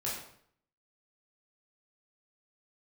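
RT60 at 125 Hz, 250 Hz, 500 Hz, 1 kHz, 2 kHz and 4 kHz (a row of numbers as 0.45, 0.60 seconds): 0.75, 0.65, 0.65, 0.60, 0.55, 0.50 seconds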